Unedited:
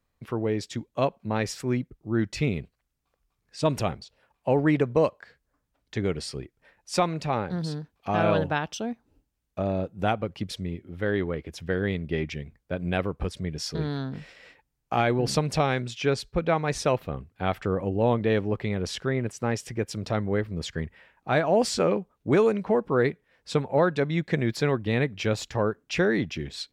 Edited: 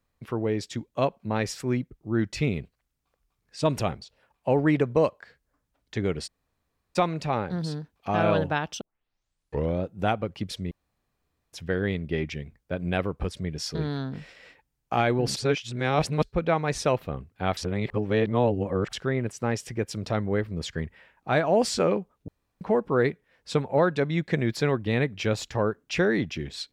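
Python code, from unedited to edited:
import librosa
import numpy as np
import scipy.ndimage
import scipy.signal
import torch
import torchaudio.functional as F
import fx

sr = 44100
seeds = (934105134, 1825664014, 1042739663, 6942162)

y = fx.edit(x, sr, fx.room_tone_fill(start_s=6.27, length_s=0.69, crossfade_s=0.02),
    fx.tape_start(start_s=8.81, length_s=1.02),
    fx.room_tone_fill(start_s=10.71, length_s=0.82),
    fx.reverse_span(start_s=15.36, length_s=0.87),
    fx.reverse_span(start_s=17.57, length_s=1.36),
    fx.room_tone_fill(start_s=22.28, length_s=0.33), tone=tone)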